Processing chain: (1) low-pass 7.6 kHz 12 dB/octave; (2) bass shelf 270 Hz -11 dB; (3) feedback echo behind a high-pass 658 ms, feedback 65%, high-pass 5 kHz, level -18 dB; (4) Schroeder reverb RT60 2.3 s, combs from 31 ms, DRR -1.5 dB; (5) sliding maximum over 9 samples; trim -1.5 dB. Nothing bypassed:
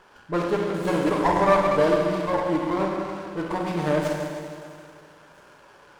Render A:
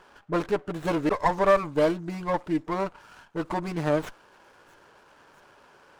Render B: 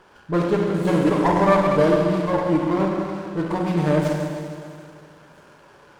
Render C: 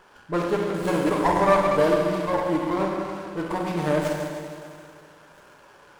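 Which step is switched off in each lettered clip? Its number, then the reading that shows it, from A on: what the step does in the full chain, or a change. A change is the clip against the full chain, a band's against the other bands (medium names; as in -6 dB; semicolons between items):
4, loudness change -3.0 LU; 2, 125 Hz band +6.5 dB; 1, 8 kHz band +2.0 dB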